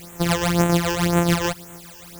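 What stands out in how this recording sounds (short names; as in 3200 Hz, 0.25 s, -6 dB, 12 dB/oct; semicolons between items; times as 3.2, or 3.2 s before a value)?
a buzz of ramps at a fixed pitch in blocks of 256 samples; tremolo triangle 7 Hz, depth 55%; a quantiser's noise floor 8-bit, dither triangular; phasing stages 12, 1.9 Hz, lowest notch 210–4800 Hz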